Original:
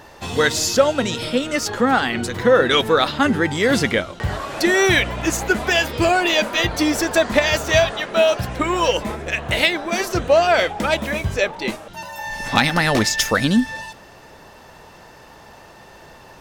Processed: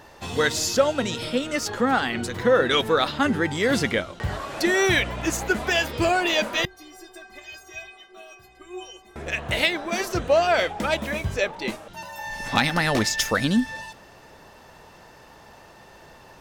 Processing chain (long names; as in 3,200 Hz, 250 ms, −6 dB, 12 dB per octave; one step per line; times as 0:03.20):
0:06.65–0:09.16: stiff-string resonator 370 Hz, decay 0.33 s, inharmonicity 0.008
level −4.5 dB